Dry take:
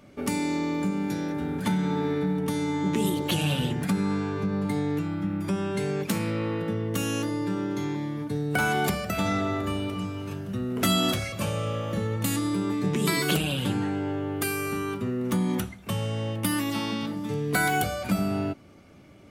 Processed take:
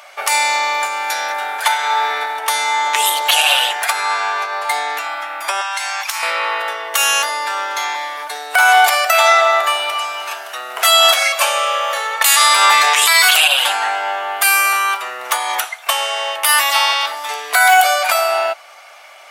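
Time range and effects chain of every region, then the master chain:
0:05.61–0:06.23: Chebyshev high-pass filter 860 Hz, order 3 + parametric band 5,700 Hz +6 dB 0.43 octaves + downward compressor 12 to 1, threshold −37 dBFS
0:12.21–0:13.48: low-pass filter 2,800 Hz 6 dB per octave + spectral tilt +3.5 dB per octave + envelope flattener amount 100%
whole clip: elliptic high-pass filter 690 Hz, stop band 80 dB; boost into a limiter +21.5 dB; level −1 dB

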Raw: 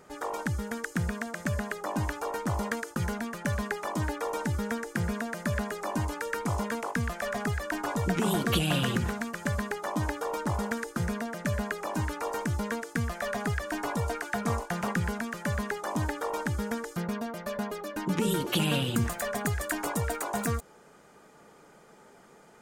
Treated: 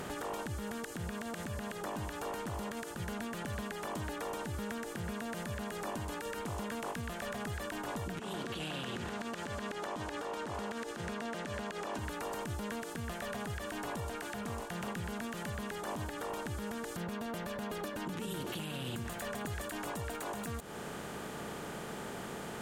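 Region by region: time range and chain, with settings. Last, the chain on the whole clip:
0:08.19–0:11.99: three-way crossover with the lows and the highs turned down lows −13 dB, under 240 Hz, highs −20 dB, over 7,400 Hz + downward compressor, threshold −36 dBFS
whole clip: compressor on every frequency bin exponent 0.6; downward compressor, threshold −34 dBFS; brickwall limiter −29 dBFS; level −1 dB

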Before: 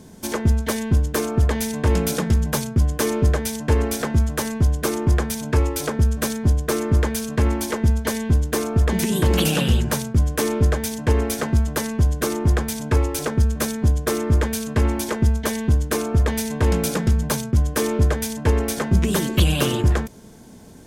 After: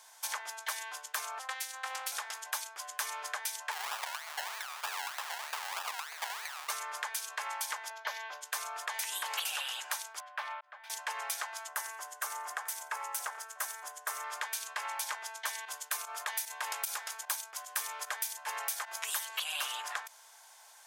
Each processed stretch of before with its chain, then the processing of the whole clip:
0:01.39–0:02.12: phases set to zero 261 Hz + highs frequency-modulated by the lows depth 0.2 ms
0:03.71–0:06.70: downward compressor 2.5 to 1, threshold −20 dBFS + sample-and-hold swept by an LFO 29×, swing 60% 3.2 Hz
0:07.90–0:08.41: moving average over 5 samples + parametric band 570 Hz +8.5 dB 0.3 octaves
0:10.20–0:10.90: elliptic band-stop filter 210–510 Hz + volume swells 589 ms + high-frequency loss of the air 390 metres
0:11.68–0:14.24: parametric band 3,900 Hz −8.5 dB 1.2 octaves + notch filter 2,400 Hz, Q 19 + single-tap delay 86 ms −18.5 dB
0:15.65–0:19.25: high-shelf EQ 10,000 Hz +10 dB + fake sidechain pumping 150 BPM, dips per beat 1, −12 dB, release 66 ms
whole clip: Butterworth high-pass 790 Hz 36 dB per octave; downward compressor 4 to 1, threshold −31 dBFS; level −2.5 dB

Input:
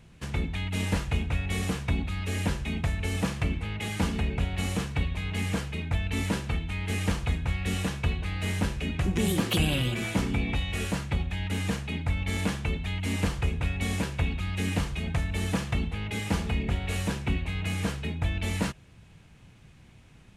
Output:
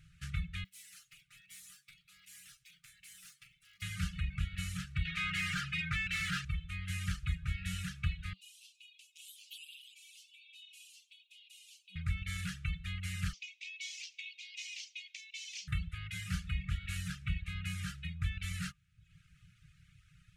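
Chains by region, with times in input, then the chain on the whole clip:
0:00.64–0:03.82: lower of the sound and its delayed copy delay 6.6 ms + first-order pre-emphasis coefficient 0.97 + tuned comb filter 64 Hz, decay 0.23 s, mix 70%
0:05.05–0:06.45: parametric band 4,900 Hz +2.5 dB 1.7 octaves + comb filter 6.4 ms, depth 38% + mid-hump overdrive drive 22 dB, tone 1,800 Hz, clips at −14.5 dBFS
0:08.33–0:11.96: Butterworth high-pass 2,600 Hz 72 dB per octave + downward compressor 1.5 to 1, threshold −50 dBFS + flanger 1.3 Hz, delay 5.3 ms, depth 4.2 ms, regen +30%
0:13.33–0:15.68: Butterworth high-pass 2,200 Hz 72 dB per octave + high shelf with overshoot 8,000 Hz −12.5 dB, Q 3
whole clip: reverb reduction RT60 0.76 s; brick-wall band-stop 190–1,200 Hz; level −6 dB

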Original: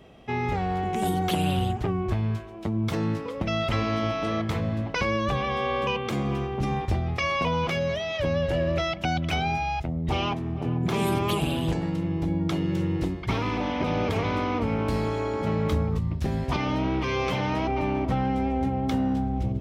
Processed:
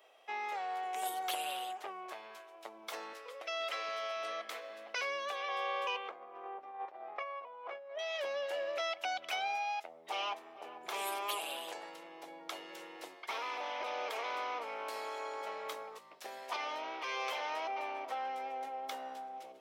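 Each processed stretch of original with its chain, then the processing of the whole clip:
0:03.13–0:05.49: parametric band 910 Hz −10 dB 0.36 octaves + multiband delay without the direct sound highs, lows 470 ms, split 300 Hz
0:06.08–0:07.99: low-pass filter 1,200 Hz + low-shelf EQ 110 Hz −10 dB + compressor whose output falls as the input rises −32 dBFS, ratio −0.5
whole clip: high-pass filter 560 Hz 24 dB per octave; high-shelf EQ 9,800 Hz +9 dB; level −7.5 dB

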